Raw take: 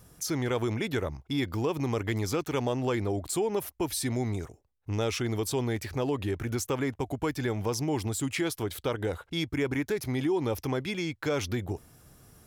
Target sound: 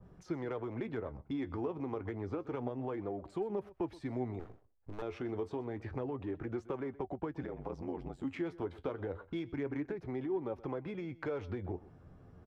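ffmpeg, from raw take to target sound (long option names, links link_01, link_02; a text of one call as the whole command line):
ffmpeg -i in.wav -filter_complex "[0:a]asettb=1/sr,asplit=3[link_01][link_02][link_03];[link_01]atrim=end=1.984[link_04];[link_02]atrim=start=1.98:end=2.4,asetpts=PTS-STARTPTS,afade=type=in:duration=0.004:curve=qsin,afade=type=out:start_time=0.416:duration=0.004:curve=qsin,highshelf=frequency=3400:gain=-7[link_05];[link_03]atrim=start=2.396[link_06];[link_04][link_05]acrossfade=duration=0.004:curve1=hsin:curve2=qsin[link_07];[link_07][link_06]acrossfade=duration=0.004:curve1=qsin:curve2=hsin,acrossover=split=240|770|4000[link_08][link_09][link_10][link_11];[link_08]alimiter=level_in=13dB:limit=-24dB:level=0:latency=1:release=192,volume=-13dB[link_12];[link_12][link_09][link_10][link_11]amix=inputs=4:normalize=0,acompressor=threshold=-34dB:ratio=6,flanger=delay=5.1:depth=6.5:regen=53:speed=0.29:shape=sinusoidal,adynamicsmooth=sensitivity=1.5:basefreq=1400,asettb=1/sr,asplit=3[link_13][link_14][link_15];[link_13]atrim=end=4.394[link_16];[link_14]atrim=start=4.39:end=5.02,asetpts=PTS-STARTPTS,afade=type=in:duration=0.004:curve=qsin,afade=type=out:start_time=0.626:duration=0.004:curve=qsin,aeval=exprs='max(val(0),0)':channel_layout=same[link_17];[link_15]atrim=start=5.016[link_18];[link_16][link_17]acrossfade=duration=0.004:curve1=hsin:curve2=qsin[link_19];[link_19][link_18]acrossfade=duration=0.004:curve1=qsin:curve2=hsin,asettb=1/sr,asplit=3[link_20][link_21][link_22];[link_20]atrim=end=7.424[link_23];[link_21]atrim=start=7.42:end=8.25,asetpts=PTS-STARTPTS,afade=type=in:duration=0.004:curve=qsin,afade=type=out:start_time=0.826:duration=0.004:curve=qsin,aeval=exprs='val(0)*sin(2*PI*44*n/s)':channel_layout=same[link_24];[link_22]atrim=start=8.246[link_25];[link_23][link_24]acrossfade=duration=0.004:curve1=hsin:curve2=qsin[link_26];[link_26][link_25]acrossfade=duration=0.004:curve1=qsin:curve2=hsin,aecho=1:1:125:0.112,adynamicequalizer=threshold=0.00126:dfrequency=1800:dqfactor=0.7:tfrequency=1800:tqfactor=0.7:attack=5:release=100:ratio=0.375:range=2:mode=cutabove:tftype=highshelf,volume=4.5dB" out.wav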